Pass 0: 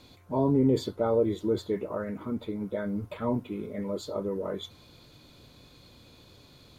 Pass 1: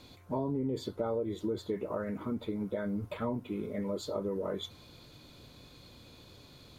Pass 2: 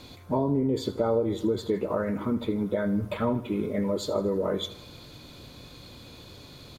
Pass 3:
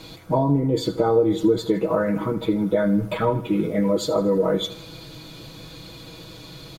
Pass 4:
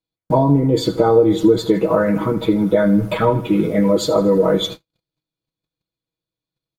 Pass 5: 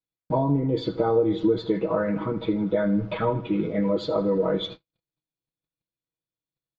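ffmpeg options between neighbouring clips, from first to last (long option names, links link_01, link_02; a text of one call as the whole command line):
ffmpeg -i in.wav -af "acompressor=threshold=-30dB:ratio=6" out.wav
ffmpeg -i in.wav -af "aecho=1:1:79|158|237|316|395:0.158|0.0824|0.0429|0.0223|0.0116,volume=7.5dB" out.wav
ffmpeg -i in.wav -af "aecho=1:1:6.2:0.78,volume=4.5dB" out.wav
ffmpeg -i in.wav -af "agate=range=-54dB:threshold=-33dB:ratio=16:detection=peak,volume=5.5dB" out.wav
ffmpeg -i in.wav -af "lowpass=frequency=4200:width=0.5412,lowpass=frequency=4200:width=1.3066,volume=-8.5dB" out.wav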